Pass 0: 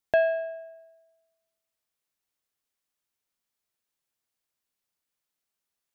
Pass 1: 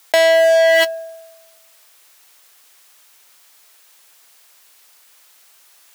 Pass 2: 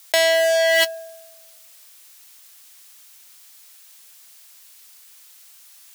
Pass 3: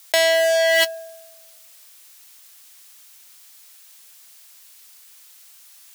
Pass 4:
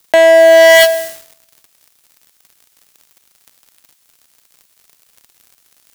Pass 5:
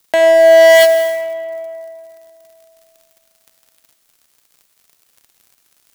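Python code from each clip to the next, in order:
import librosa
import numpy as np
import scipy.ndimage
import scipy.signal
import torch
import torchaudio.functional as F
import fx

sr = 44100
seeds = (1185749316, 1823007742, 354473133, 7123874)

y1 = fx.leveller(x, sr, passes=5)
y1 = scipy.signal.sosfilt(scipy.signal.bessel(2, 690.0, 'highpass', norm='mag', fs=sr, output='sos'), y1)
y1 = fx.env_flatten(y1, sr, amount_pct=100)
y1 = y1 * 10.0 ** (4.5 / 20.0)
y2 = fx.high_shelf(y1, sr, hz=2200.0, db=10.5)
y2 = y2 * 10.0 ** (-7.0 / 20.0)
y3 = y2
y4 = fx.leveller(y3, sr, passes=5)
y5 = fx.rev_freeverb(y4, sr, rt60_s=2.7, hf_ratio=0.45, predelay_ms=20, drr_db=8.0)
y5 = y5 * 10.0 ** (-4.5 / 20.0)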